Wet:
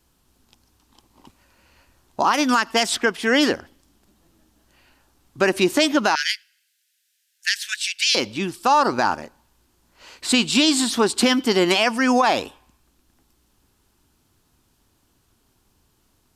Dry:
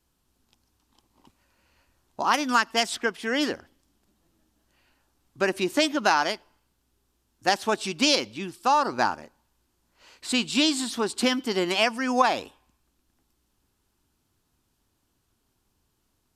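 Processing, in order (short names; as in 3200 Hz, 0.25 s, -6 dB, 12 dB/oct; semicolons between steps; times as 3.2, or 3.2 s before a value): 6.15–8.15 steep high-pass 1600 Hz 72 dB/oct; limiter -16 dBFS, peak gain reduction 9 dB; gain +8.5 dB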